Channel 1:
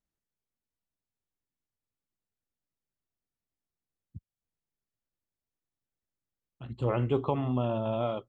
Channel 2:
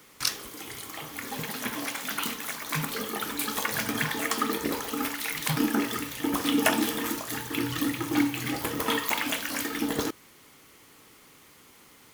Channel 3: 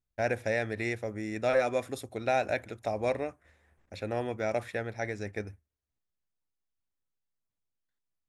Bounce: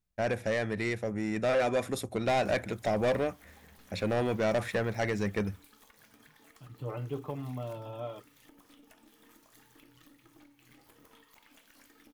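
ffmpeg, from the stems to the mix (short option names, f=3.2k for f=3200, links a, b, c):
-filter_complex "[0:a]aecho=1:1:6.7:0.75,volume=-16dB[a];[1:a]acompressor=threshold=-38dB:ratio=12,aeval=exprs='(tanh(31.6*val(0)+0.75)-tanh(0.75))/31.6':c=same,adelay=2250,volume=-19dB[b];[2:a]equalizer=f=190:w=6.6:g=12.5,volume=2dB[c];[a][b][c]amix=inputs=3:normalize=0,dynaudnorm=f=330:g=11:m=5dB,asoftclip=type=tanh:threshold=-22.5dB"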